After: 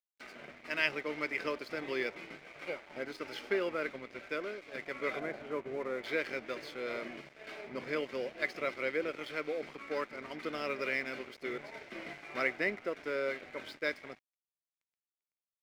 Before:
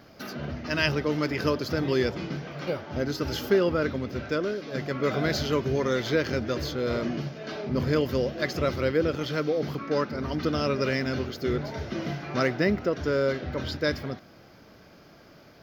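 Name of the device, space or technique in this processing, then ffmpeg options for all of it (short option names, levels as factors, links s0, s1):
pocket radio on a weak battery: -filter_complex "[0:a]asettb=1/sr,asplit=3[s0][s1][s2];[s0]atrim=end=5.194[s3];[s1]atrim=start=5.19:end=6.04,asetpts=PTS-STARTPTS,afade=t=in:d=0.004:c=qsin,afade=t=out:st=0.846:d=0.004:c=qsin,lowpass=1200[s4];[s2]atrim=start=6.036[s5];[s3][s4]acrossfade=d=0.004:c1=hsin:c2=qsin[s6];[s6][s5]acrossfade=d=0.004:c1=qsin:c2=hsin,highpass=360,lowpass=4200,aeval=exprs='sgn(val(0))*max(abs(val(0))-0.00562,0)':c=same,equalizer=f=2200:t=o:w=0.42:g=12,volume=0.398"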